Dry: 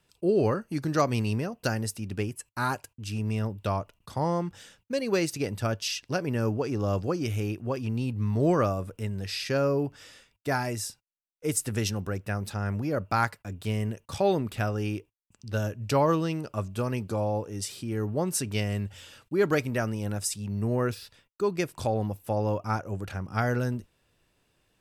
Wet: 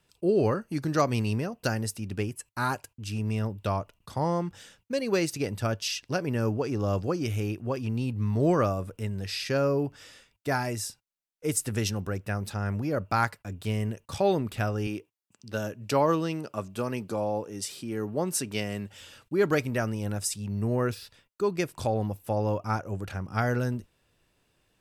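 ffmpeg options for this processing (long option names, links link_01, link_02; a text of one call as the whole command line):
ffmpeg -i in.wav -filter_complex "[0:a]asettb=1/sr,asplit=3[link_01][link_02][link_03];[link_01]atrim=end=14.874[link_04];[link_02]atrim=start=14.87:end=19.01,asetpts=PTS-STARTPTS,afade=type=in:duration=0.004:curve=qsin,afade=type=out:start_time=4.136:duration=0.004:curve=qsin,highpass=160[link_05];[link_03]atrim=start=19.006[link_06];[link_04][link_05]acrossfade=duration=0.004:curve1=hsin:curve2=qsin[link_07];[link_07][link_06]acrossfade=duration=0.004:curve1=qsin:curve2=hsin" out.wav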